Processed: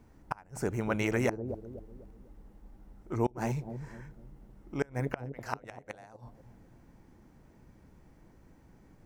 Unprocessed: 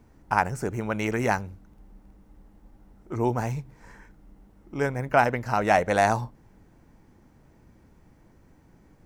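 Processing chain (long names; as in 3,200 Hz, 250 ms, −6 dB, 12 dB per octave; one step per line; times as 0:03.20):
0:05.26–0:05.93: low-shelf EQ 470 Hz −8 dB
gate with flip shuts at −14 dBFS, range −30 dB
bucket-brigade delay 248 ms, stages 1,024, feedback 40%, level −8 dB
level −2.5 dB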